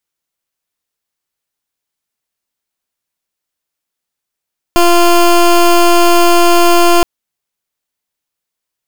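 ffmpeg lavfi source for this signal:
ffmpeg -f lavfi -i "aevalsrc='0.447*(2*lt(mod(346*t,1),0.18)-1)':duration=2.27:sample_rate=44100" out.wav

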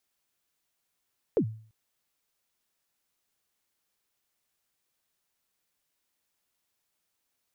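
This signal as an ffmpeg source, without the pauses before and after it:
ffmpeg -f lavfi -i "aevalsrc='0.126*pow(10,-3*t/0.47)*sin(2*PI*(520*0.079/log(110/520)*(exp(log(110/520)*min(t,0.079)/0.079)-1)+110*max(t-0.079,0)))':duration=0.34:sample_rate=44100" out.wav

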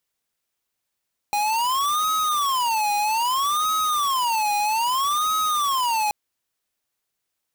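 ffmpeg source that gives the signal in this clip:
ffmpeg -f lavfi -i "aevalsrc='0.0794*(2*lt(mod((1047.5*t-222.5/(2*PI*0.62)*sin(2*PI*0.62*t)),1),0.5)-1)':duration=4.78:sample_rate=44100" out.wav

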